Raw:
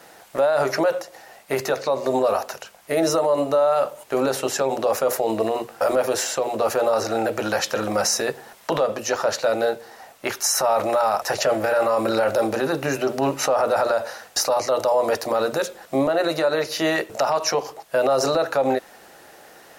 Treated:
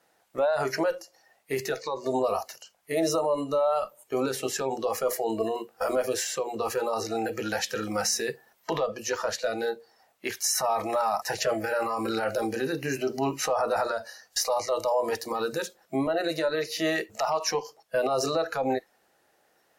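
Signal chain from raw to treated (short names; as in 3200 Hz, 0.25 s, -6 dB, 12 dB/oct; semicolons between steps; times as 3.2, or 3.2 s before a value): added harmonics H 4 -33 dB, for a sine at -10.5 dBFS; spectral noise reduction 15 dB; gain -5 dB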